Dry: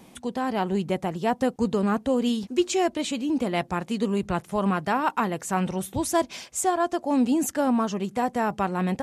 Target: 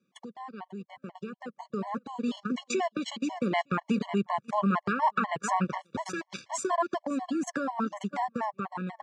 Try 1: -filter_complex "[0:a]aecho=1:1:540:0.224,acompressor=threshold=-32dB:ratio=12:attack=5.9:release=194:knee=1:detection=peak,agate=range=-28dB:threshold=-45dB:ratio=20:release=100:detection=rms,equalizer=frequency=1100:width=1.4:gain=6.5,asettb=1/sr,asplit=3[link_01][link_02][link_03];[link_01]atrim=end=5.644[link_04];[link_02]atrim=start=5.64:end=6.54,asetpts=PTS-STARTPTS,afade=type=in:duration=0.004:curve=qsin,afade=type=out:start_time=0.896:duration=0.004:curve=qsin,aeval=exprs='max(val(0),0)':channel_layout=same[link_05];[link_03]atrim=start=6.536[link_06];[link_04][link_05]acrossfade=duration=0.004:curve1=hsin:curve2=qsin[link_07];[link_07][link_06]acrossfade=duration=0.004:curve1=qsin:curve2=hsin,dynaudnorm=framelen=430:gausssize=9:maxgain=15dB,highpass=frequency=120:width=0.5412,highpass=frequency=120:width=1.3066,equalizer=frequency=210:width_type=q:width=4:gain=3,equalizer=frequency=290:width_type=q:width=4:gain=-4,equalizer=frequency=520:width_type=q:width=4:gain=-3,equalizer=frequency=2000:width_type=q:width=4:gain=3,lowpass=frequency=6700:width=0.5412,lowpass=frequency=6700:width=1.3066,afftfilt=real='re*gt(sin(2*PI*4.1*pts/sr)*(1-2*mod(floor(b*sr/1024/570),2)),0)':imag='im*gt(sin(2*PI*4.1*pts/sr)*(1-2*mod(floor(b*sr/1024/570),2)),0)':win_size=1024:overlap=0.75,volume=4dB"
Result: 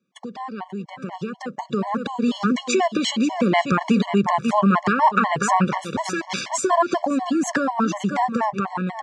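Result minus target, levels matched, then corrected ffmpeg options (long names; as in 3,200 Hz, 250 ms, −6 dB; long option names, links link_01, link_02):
downward compressor: peak gain reduction −9.5 dB
-filter_complex "[0:a]aecho=1:1:540:0.224,acompressor=threshold=-42.5dB:ratio=12:attack=5.9:release=194:knee=1:detection=peak,agate=range=-28dB:threshold=-45dB:ratio=20:release=100:detection=rms,equalizer=frequency=1100:width=1.4:gain=6.5,asettb=1/sr,asplit=3[link_01][link_02][link_03];[link_01]atrim=end=5.644[link_04];[link_02]atrim=start=5.64:end=6.54,asetpts=PTS-STARTPTS,afade=type=in:duration=0.004:curve=qsin,afade=type=out:start_time=0.896:duration=0.004:curve=qsin,aeval=exprs='max(val(0),0)':channel_layout=same[link_05];[link_03]atrim=start=6.536[link_06];[link_04][link_05]acrossfade=duration=0.004:curve1=hsin:curve2=qsin[link_07];[link_07][link_06]acrossfade=duration=0.004:curve1=qsin:curve2=hsin,dynaudnorm=framelen=430:gausssize=9:maxgain=15dB,highpass=frequency=120:width=0.5412,highpass=frequency=120:width=1.3066,equalizer=frequency=210:width_type=q:width=4:gain=3,equalizer=frequency=290:width_type=q:width=4:gain=-4,equalizer=frequency=520:width_type=q:width=4:gain=-3,equalizer=frequency=2000:width_type=q:width=4:gain=3,lowpass=frequency=6700:width=0.5412,lowpass=frequency=6700:width=1.3066,afftfilt=real='re*gt(sin(2*PI*4.1*pts/sr)*(1-2*mod(floor(b*sr/1024/570),2)),0)':imag='im*gt(sin(2*PI*4.1*pts/sr)*(1-2*mod(floor(b*sr/1024/570),2)),0)':win_size=1024:overlap=0.75,volume=4dB"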